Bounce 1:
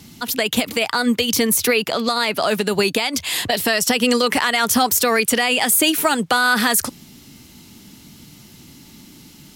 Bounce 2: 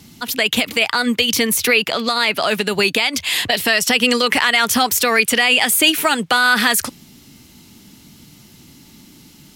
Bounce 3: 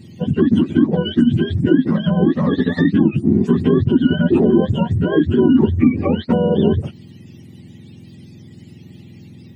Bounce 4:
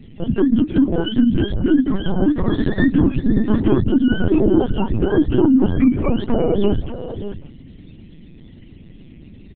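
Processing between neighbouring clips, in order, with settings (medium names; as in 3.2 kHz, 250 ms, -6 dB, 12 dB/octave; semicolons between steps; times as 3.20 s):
dynamic bell 2.5 kHz, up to +7 dB, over -33 dBFS, Q 0.83; trim -1 dB
spectrum inverted on a logarithmic axis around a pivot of 850 Hz; compression 2.5:1, threshold -17 dBFS, peak gain reduction 9 dB; small resonant body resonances 230/350/1900 Hz, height 10 dB, ringing for 20 ms; trim -4 dB
delay 592 ms -11.5 dB; LPC vocoder at 8 kHz pitch kept; trim -1 dB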